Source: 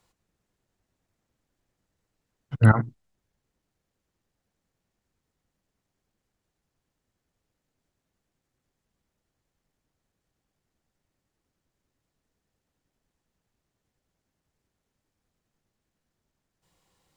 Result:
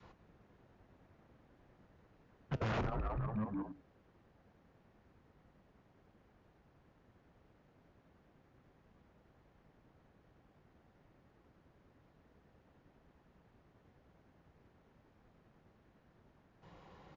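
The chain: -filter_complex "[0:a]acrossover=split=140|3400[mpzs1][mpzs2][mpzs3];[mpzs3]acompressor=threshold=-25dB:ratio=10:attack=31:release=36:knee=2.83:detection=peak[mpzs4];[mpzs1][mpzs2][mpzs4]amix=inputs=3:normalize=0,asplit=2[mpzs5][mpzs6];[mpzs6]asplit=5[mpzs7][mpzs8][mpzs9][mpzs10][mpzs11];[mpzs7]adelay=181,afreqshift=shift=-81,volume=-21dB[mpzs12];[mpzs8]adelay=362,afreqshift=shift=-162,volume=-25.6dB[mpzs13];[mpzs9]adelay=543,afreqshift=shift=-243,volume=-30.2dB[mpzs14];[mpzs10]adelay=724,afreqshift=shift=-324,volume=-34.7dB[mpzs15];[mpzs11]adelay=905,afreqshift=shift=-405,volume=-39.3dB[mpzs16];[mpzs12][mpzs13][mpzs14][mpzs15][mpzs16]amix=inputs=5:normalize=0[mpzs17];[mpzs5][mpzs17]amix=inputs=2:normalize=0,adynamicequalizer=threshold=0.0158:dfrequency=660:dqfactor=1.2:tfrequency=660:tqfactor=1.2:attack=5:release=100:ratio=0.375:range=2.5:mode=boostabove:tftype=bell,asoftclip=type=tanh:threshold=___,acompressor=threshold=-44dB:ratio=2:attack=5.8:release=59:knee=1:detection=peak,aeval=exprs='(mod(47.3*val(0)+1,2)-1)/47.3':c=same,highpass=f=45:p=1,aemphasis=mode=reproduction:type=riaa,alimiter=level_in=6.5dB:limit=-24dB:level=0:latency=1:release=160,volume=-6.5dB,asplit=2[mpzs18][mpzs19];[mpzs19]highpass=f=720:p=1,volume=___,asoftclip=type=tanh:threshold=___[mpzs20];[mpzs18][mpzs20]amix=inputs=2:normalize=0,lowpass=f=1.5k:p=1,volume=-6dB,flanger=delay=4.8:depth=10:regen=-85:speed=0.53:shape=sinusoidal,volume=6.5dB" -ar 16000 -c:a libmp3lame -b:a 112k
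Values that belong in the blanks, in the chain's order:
-15.5dB, 22dB, -30dB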